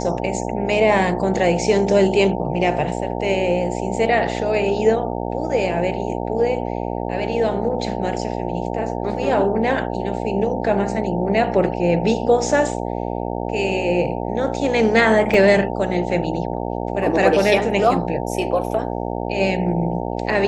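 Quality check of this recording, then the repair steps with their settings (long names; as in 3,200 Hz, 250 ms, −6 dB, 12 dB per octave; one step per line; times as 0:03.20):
mains buzz 60 Hz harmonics 15 −25 dBFS
0:15.34: drop-out 2.8 ms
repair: hum removal 60 Hz, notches 15
repair the gap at 0:15.34, 2.8 ms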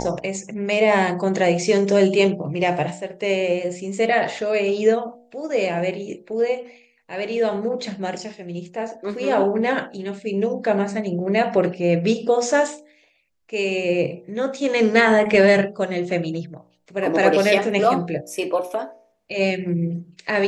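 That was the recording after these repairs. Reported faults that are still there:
none of them is left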